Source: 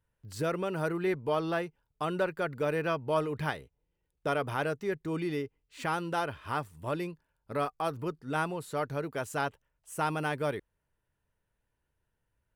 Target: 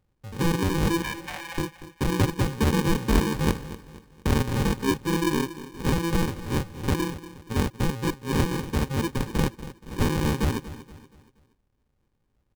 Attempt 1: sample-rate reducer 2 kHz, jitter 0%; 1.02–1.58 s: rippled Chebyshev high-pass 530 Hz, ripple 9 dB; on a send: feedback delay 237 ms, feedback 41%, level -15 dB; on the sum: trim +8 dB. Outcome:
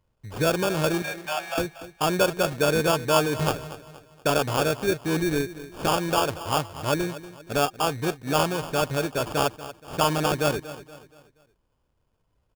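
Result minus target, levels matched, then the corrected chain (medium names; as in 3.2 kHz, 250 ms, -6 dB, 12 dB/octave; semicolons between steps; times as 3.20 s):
sample-rate reducer: distortion -25 dB
sample-rate reducer 670 Hz, jitter 0%; 1.02–1.58 s: rippled Chebyshev high-pass 530 Hz, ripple 9 dB; on a send: feedback delay 237 ms, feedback 41%, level -15 dB; on the sum: trim +8 dB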